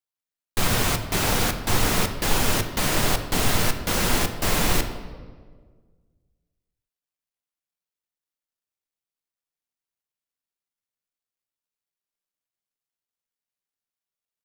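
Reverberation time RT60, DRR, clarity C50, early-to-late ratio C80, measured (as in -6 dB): 1.7 s, 6.5 dB, 9.5 dB, 11.0 dB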